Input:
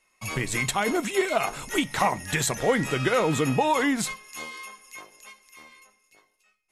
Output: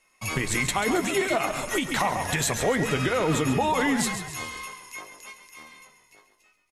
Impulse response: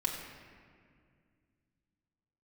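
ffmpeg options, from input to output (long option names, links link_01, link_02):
-filter_complex "[0:a]asplit=2[link_01][link_02];[link_02]adelay=12,volume=-12dB[link_03];[link_01][link_03]amix=inputs=2:normalize=0,asplit=6[link_04][link_05][link_06][link_07][link_08][link_09];[link_05]adelay=136,afreqshift=-41,volume=-10dB[link_10];[link_06]adelay=272,afreqshift=-82,volume=-16.2dB[link_11];[link_07]adelay=408,afreqshift=-123,volume=-22.4dB[link_12];[link_08]adelay=544,afreqshift=-164,volume=-28.6dB[link_13];[link_09]adelay=680,afreqshift=-205,volume=-34.8dB[link_14];[link_04][link_10][link_11][link_12][link_13][link_14]amix=inputs=6:normalize=0,alimiter=limit=-17dB:level=0:latency=1:release=117,volume=2.5dB"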